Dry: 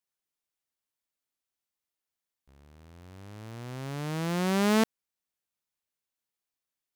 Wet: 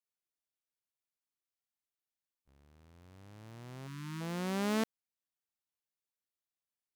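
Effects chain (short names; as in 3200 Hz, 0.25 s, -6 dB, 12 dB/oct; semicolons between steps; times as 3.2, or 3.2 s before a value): harmoniser +5 st -18 dB; spectral delete 3.87–4.21, 400–890 Hz; gain -8.5 dB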